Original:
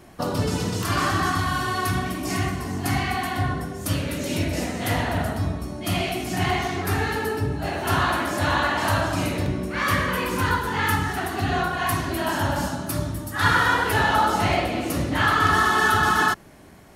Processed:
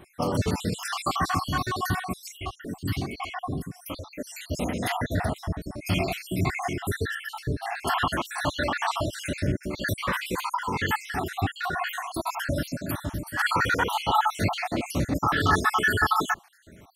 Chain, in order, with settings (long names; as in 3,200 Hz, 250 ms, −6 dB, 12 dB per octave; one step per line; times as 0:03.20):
time-frequency cells dropped at random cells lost 61%
0:02.28–0:04.51: phaser with staggered stages 1.3 Hz